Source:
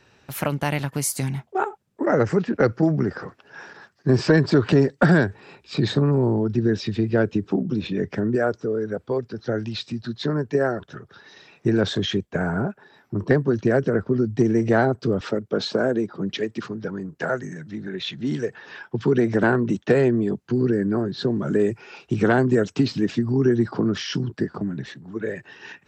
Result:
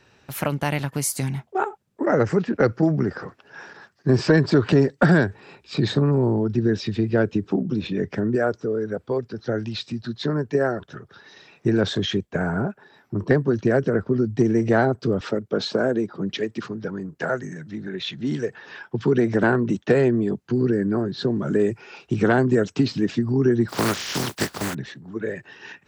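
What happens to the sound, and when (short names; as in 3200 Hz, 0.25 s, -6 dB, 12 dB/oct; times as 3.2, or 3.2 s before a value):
23.68–24.73 spectral contrast lowered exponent 0.33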